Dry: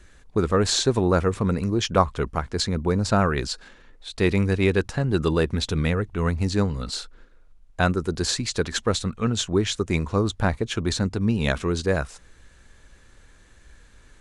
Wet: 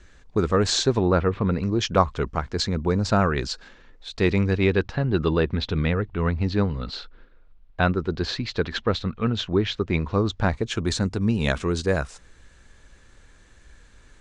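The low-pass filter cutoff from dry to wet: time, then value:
low-pass filter 24 dB per octave
0:00.80 7,300 Hz
0:01.32 3,400 Hz
0:01.85 6,800 Hz
0:04.11 6,800 Hz
0:05.08 4,200 Hz
0:09.96 4,200 Hz
0:10.85 9,200 Hz

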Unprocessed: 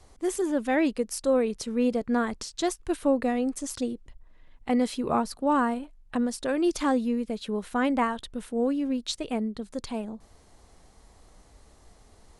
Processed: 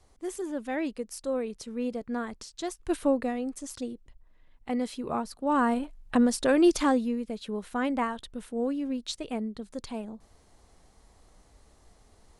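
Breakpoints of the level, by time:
0:02.71 −7 dB
0:02.95 +1 dB
0:03.38 −5.5 dB
0:05.38 −5.5 dB
0:05.81 +4.5 dB
0:06.64 +4.5 dB
0:07.17 −3.5 dB

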